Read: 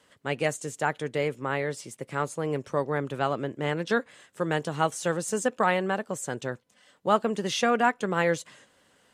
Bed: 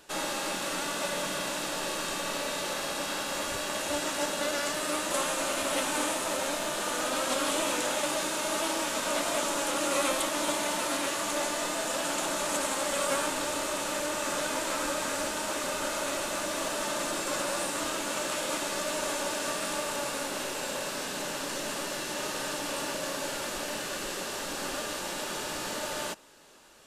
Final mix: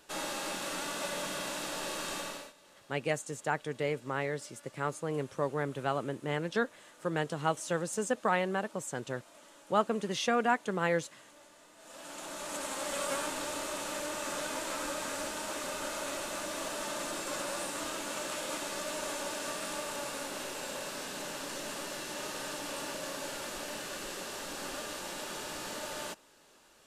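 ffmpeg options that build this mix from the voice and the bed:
ffmpeg -i stem1.wav -i stem2.wav -filter_complex "[0:a]adelay=2650,volume=-5dB[link_01];[1:a]volume=17.5dB,afade=type=out:start_time=2.18:duration=0.35:silence=0.0707946,afade=type=in:start_time=11.76:duration=1.18:silence=0.0794328[link_02];[link_01][link_02]amix=inputs=2:normalize=0" out.wav

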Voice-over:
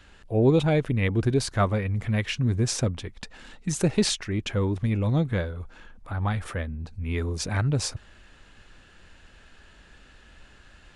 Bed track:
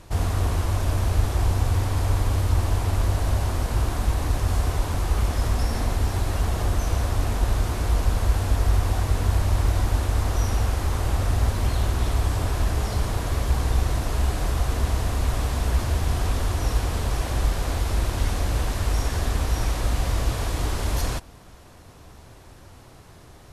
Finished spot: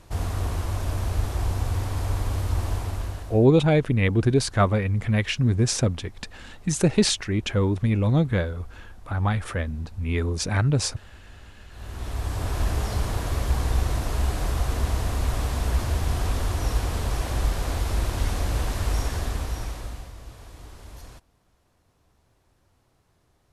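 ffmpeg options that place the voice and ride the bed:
ffmpeg -i stem1.wav -i stem2.wav -filter_complex "[0:a]adelay=3000,volume=3dB[link_01];[1:a]volume=21.5dB,afade=type=out:start_time=2.72:duration=0.75:silence=0.0707946,afade=type=in:start_time=11.7:duration=0.94:silence=0.0530884,afade=type=out:start_time=18.96:duration=1.16:silence=0.141254[link_02];[link_01][link_02]amix=inputs=2:normalize=0" out.wav

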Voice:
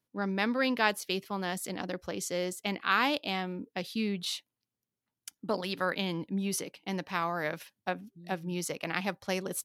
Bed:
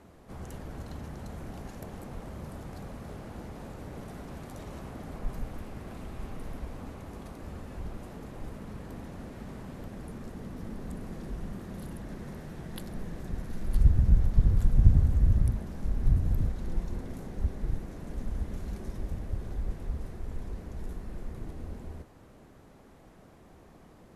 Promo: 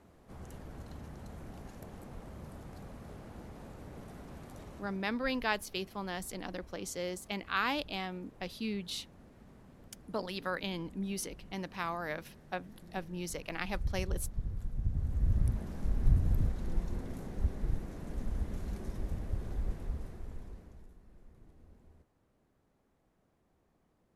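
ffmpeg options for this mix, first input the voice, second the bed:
ffmpeg -i stem1.wav -i stem2.wav -filter_complex "[0:a]adelay=4650,volume=-5dB[link_01];[1:a]volume=6.5dB,afade=type=out:start_time=4.61:duration=0.47:silence=0.375837,afade=type=in:start_time=14.9:duration=0.78:silence=0.237137,afade=type=out:start_time=19.69:duration=1.21:silence=0.141254[link_02];[link_01][link_02]amix=inputs=2:normalize=0" out.wav

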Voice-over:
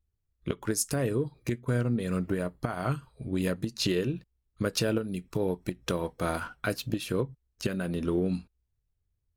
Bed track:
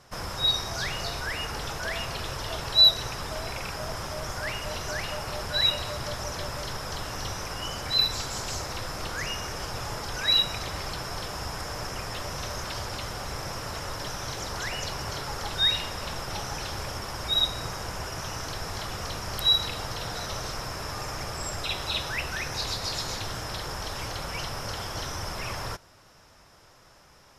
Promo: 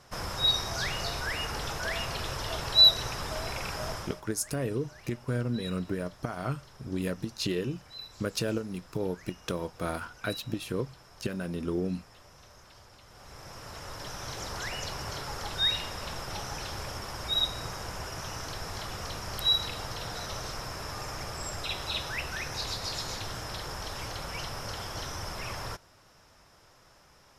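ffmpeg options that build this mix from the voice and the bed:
ffmpeg -i stem1.wav -i stem2.wav -filter_complex "[0:a]adelay=3600,volume=-3dB[link_01];[1:a]volume=16dB,afade=type=out:start_time=3.89:duration=0.33:silence=0.105925,afade=type=in:start_time=13.06:duration=1.38:silence=0.141254[link_02];[link_01][link_02]amix=inputs=2:normalize=0" out.wav

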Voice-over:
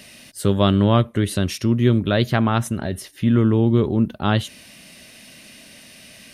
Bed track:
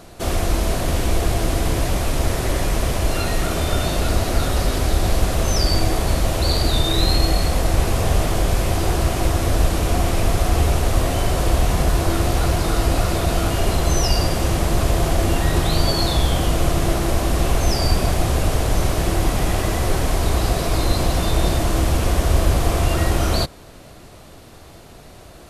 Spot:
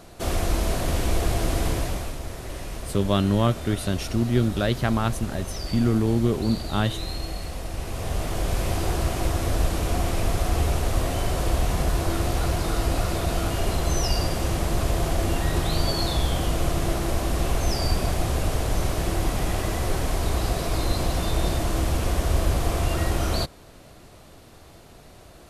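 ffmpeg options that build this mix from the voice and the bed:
ffmpeg -i stem1.wav -i stem2.wav -filter_complex "[0:a]adelay=2500,volume=-5dB[link_01];[1:a]volume=4.5dB,afade=type=out:start_time=1.66:duration=0.53:silence=0.316228,afade=type=in:start_time=7.78:duration=0.87:silence=0.375837[link_02];[link_01][link_02]amix=inputs=2:normalize=0" out.wav

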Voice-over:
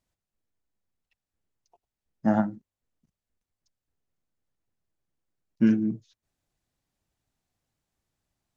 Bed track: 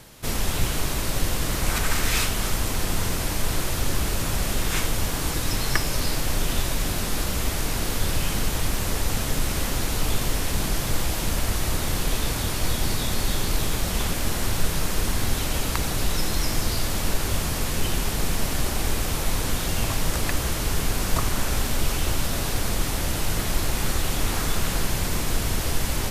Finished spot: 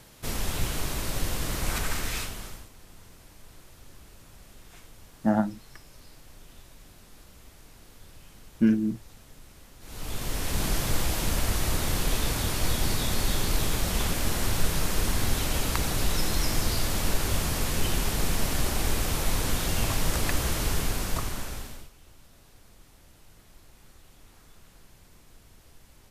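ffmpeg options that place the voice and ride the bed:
ffmpeg -i stem1.wav -i stem2.wav -filter_complex "[0:a]adelay=3000,volume=-0.5dB[link_01];[1:a]volume=19dB,afade=type=out:start_time=1.77:duration=0.92:silence=0.0891251,afade=type=in:start_time=9.8:duration=0.88:silence=0.0630957,afade=type=out:start_time=20.64:duration=1.26:silence=0.0398107[link_02];[link_01][link_02]amix=inputs=2:normalize=0" out.wav

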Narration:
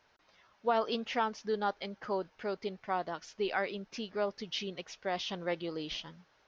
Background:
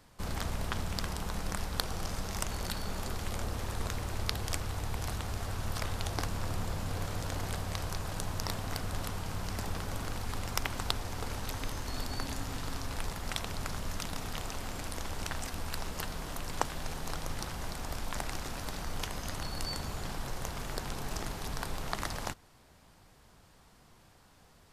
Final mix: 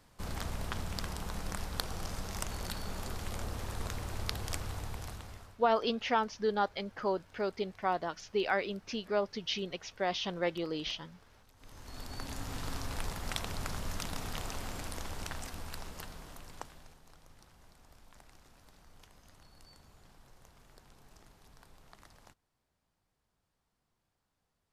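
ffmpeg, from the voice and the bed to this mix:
ffmpeg -i stem1.wav -i stem2.wav -filter_complex "[0:a]adelay=4950,volume=2dB[link_01];[1:a]volume=22.5dB,afade=type=out:start_time=4.7:duration=0.89:silence=0.0668344,afade=type=in:start_time=11.56:duration=1.12:silence=0.0530884,afade=type=out:start_time=14.56:duration=2.44:silence=0.0891251[link_02];[link_01][link_02]amix=inputs=2:normalize=0" out.wav

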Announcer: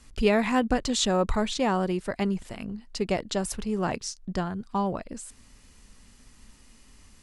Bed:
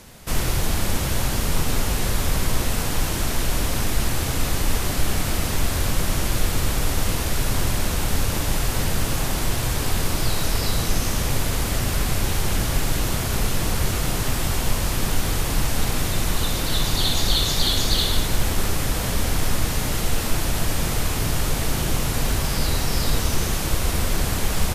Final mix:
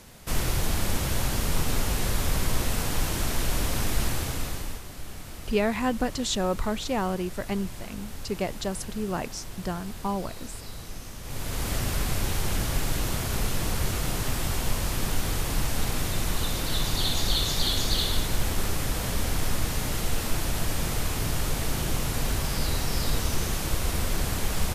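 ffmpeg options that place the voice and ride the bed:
ffmpeg -i stem1.wav -i stem2.wav -filter_complex "[0:a]adelay=5300,volume=-2.5dB[link_01];[1:a]volume=8.5dB,afade=type=out:start_time=4.04:duration=0.79:silence=0.211349,afade=type=in:start_time=11.22:duration=0.49:silence=0.237137[link_02];[link_01][link_02]amix=inputs=2:normalize=0" out.wav

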